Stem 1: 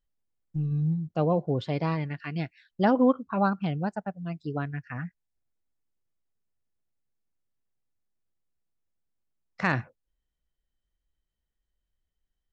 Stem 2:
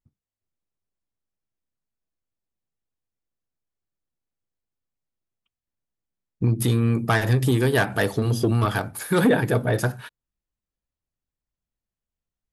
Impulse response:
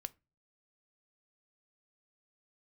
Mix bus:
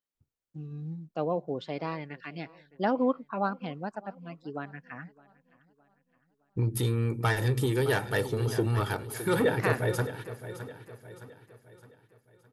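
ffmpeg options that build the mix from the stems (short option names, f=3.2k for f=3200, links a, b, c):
-filter_complex "[0:a]highpass=240,volume=-3.5dB,asplit=2[a][b];[b]volume=-23dB[c];[1:a]aecho=1:1:2.2:0.44,adelay=150,volume=-7dB,asplit=2[d][e];[e]volume=-12.5dB[f];[c][f]amix=inputs=2:normalize=0,aecho=0:1:614|1228|1842|2456|3070|3684:1|0.44|0.194|0.0852|0.0375|0.0165[g];[a][d][g]amix=inputs=3:normalize=0"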